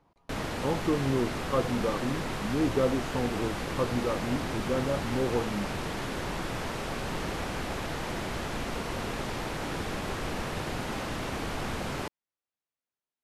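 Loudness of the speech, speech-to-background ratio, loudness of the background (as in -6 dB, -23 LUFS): -31.5 LUFS, 2.5 dB, -34.0 LUFS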